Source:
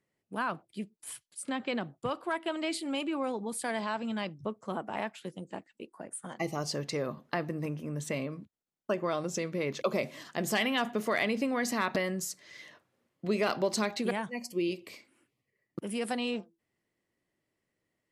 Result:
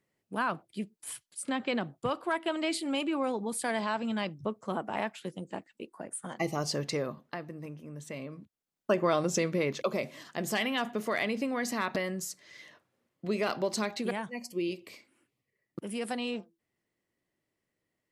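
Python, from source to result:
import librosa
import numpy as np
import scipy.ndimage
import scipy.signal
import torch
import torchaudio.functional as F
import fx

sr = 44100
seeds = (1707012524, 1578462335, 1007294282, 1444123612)

y = fx.gain(x, sr, db=fx.line((6.93, 2.0), (7.41, -7.5), (8.09, -7.5), (8.98, 5.0), (9.5, 5.0), (9.91, -1.5)))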